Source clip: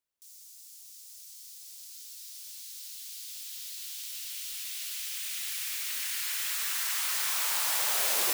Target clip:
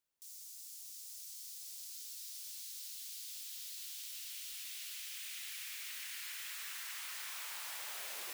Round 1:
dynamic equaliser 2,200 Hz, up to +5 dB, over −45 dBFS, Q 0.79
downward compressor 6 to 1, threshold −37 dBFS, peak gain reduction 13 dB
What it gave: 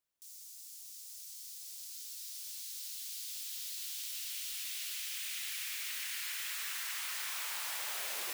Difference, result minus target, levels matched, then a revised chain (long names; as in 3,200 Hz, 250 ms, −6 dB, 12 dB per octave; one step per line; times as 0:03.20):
downward compressor: peak gain reduction −5.5 dB
dynamic equaliser 2,200 Hz, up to +5 dB, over −45 dBFS, Q 0.79
downward compressor 6 to 1, threshold −43.5 dBFS, peak gain reduction 18.5 dB